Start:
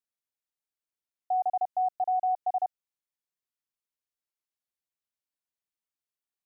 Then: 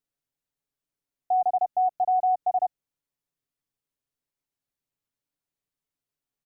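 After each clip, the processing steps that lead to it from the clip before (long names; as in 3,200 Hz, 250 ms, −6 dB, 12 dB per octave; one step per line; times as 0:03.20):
low-shelf EQ 480 Hz +11.5 dB
comb filter 7.1 ms, depth 53%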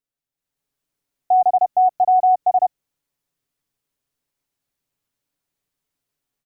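automatic gain control gain up to 10.5 dB
level −2.5 dB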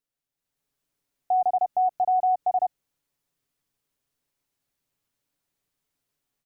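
brickwall limiter −17.5 dBFS, peak gain reduction 7.5 dB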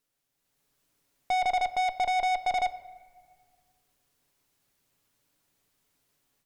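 tube saturation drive 32 dB, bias 0.2
on a send at −13 dB: convolution reverb RT60 1.8 s, pre-delay 3 ms
on the sum: level +8 dB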